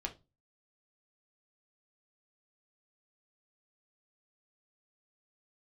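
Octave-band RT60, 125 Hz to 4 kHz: 0.45, 0.35, 0.30, 0.25, 0.20, 0.20 seconds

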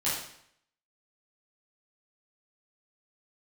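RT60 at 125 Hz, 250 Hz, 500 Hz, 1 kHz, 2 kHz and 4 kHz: 0.70, 0.65, 0.65, 0.70, 0.70, 0.65 seconds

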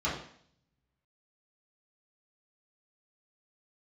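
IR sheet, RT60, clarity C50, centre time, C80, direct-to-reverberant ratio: 0.60 s, 4.5 dB, 39 ms, 8.0 dB, −10.0 dB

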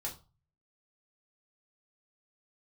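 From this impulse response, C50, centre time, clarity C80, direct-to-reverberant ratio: 11.5 dB, 17 ms, 18.5 dB, −3.0 dB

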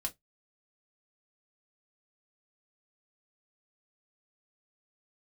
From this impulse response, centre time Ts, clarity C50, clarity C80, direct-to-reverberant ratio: 7 ms, 22.5 dB, 37.5 dB, 0.5 dB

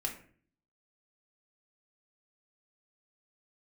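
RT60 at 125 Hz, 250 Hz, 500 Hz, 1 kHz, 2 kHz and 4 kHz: 0.75, 0.70, 0.55, 0.40, 0.45, 0.30 seconds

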